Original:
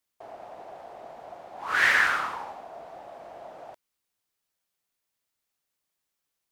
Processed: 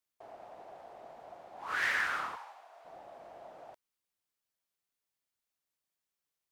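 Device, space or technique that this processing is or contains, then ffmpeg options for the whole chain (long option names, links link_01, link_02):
clipper into limiter: -filter_complex "[0:a]asplit=3[link_01][link_02][link_03];[link_01]afade=type=out:start_time=2.35:duration=0.02[link_04];[link_02]highpass=980,afade=type=in:start_time=2.35:duration=0.02,afade=type=out:start_time=2.84:duration=0.02[link_05];[link_03]afade=type=in:start_time=2.84:duration=0.02[link_06];[link_04][link_05][link_06]amix=inputs=3:normalize=0,asoftclip=type=hard:threshold=-13.5dB,alimiter=limit=-16.5dB:level=0:latency=1:release=131,volume=-7dB"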